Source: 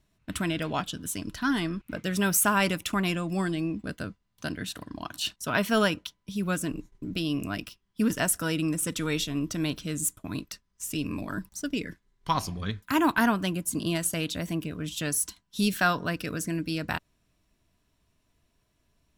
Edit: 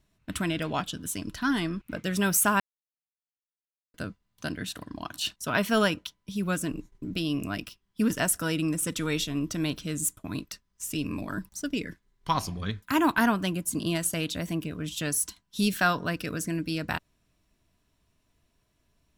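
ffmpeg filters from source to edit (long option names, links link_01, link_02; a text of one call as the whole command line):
ffmpeg -i in.wav -filter_complex "[0:a]asplit=3[link_01][link_02][link_03];[link_01]atrim=end=2.6,asetpts=PTS-STARTPTS,afade=type=out:start_time=2.596:duration=0.004:curve=hsin[link_04];[link_02]atrim=start=2.6:end=3.94,asetpts=PTS-STARTPTS,volume=0[link_05];[link_03]atrim=start=3.94,asetpts=PTS-STARTPTS,afade=type=in:duration=0.004:curve=hsin[link_06];[link_04][link_05][link_06]concat=n=3:v=0:a=1" out.wav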